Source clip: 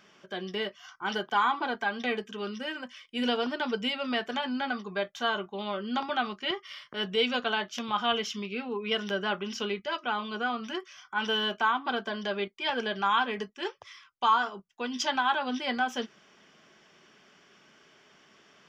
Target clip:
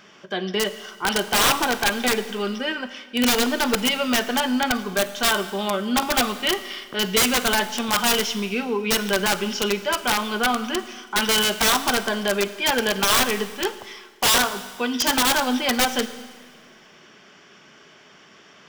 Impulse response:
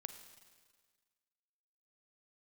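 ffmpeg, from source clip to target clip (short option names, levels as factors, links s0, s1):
-filter_complex "[0:a]aeval=exprs='(mod(11.9*val(0)+1,2)-1)/11.9':c=same,asplit=2[s0][s1];[1:a]atrim=start_sample=2205[s2];[s1][s2]afir=irnorm=-1:irlink=0,volume=3.16[s3];[s0][s3]amix=inputs=2:normalize=0"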